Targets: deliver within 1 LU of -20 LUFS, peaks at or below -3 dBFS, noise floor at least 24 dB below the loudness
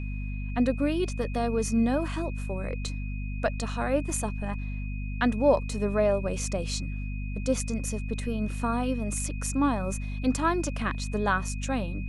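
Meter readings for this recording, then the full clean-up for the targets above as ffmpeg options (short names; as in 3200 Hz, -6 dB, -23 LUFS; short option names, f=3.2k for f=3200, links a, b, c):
hum 50 Hz; harmonics up to 250 Hz; hum level -30 dBFS; steady tone 2500 Hz; tone level -45 dBFS; loudness -29.0 LUFS; peak -9.5 dBFS; loudness target -20.0 LUFS
-> -af "bandreject=f=50:t=h:w=4,bandreject=f=100:t=h:w=4,bandreject=f=150:t=h:w=4,bandreject=f=200:t=h:w=4,bandreject=f=250:t=h:w=4"
-af "bandreject=f=2.5k:w=30"
-af "volume=9dB,alimiter=limit=-3dB:level=0:latency=1"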